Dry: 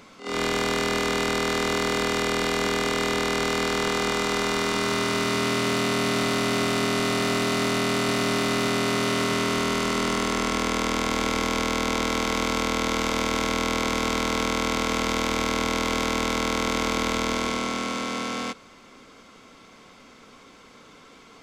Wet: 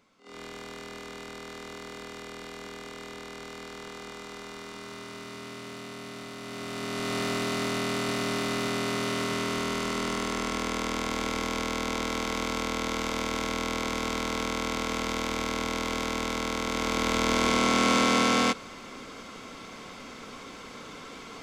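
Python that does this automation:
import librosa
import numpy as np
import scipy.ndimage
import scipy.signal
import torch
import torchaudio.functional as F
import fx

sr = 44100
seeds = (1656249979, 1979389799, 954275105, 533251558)

y = fx.gain(x, sr, db=fx.line((6.37, -17.0), (7.17, -5.5), (16.66, -5.5), (17.93, 6.5)))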